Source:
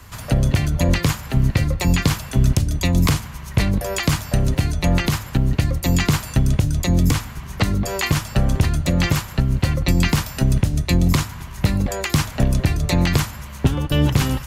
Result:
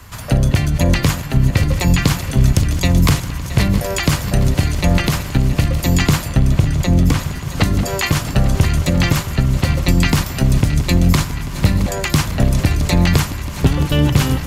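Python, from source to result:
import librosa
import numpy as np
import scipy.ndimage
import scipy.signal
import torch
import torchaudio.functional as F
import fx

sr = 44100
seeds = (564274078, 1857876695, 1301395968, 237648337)

y = fx.reverse_delay_fb(x, sr, ms=335, feedback_pct=80, wet_db=-13)
y = fx.high_shelf(y, sr, hz=4300.0, db=-6.5, at=(6.28, 7.19))
y = y * librosa.db_to_amplitude(3.0)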